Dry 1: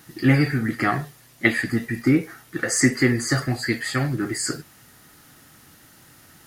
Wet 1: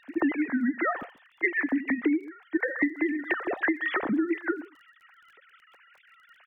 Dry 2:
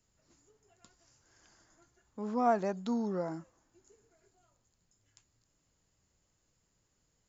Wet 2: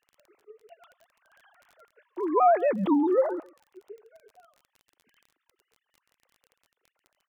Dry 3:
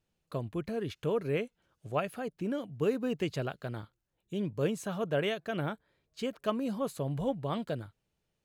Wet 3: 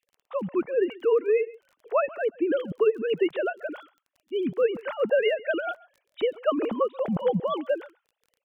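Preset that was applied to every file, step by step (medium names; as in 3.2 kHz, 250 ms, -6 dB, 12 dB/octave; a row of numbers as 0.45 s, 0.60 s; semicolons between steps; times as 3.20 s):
formants replaced by sine waves; echo from a far wall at 23 m, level -23 dB; compression 16:1, threshold -28 dBFS; crackle 26 per s -55 dBFS; peak normalisation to -12 dBFS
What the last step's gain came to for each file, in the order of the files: +5.5 dB, +12.0 dB, +10.5 dB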